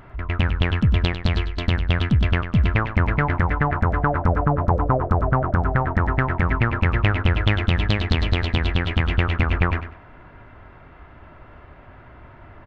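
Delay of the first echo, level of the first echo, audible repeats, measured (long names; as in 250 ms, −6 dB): 98 ms, −10.5 dB, 2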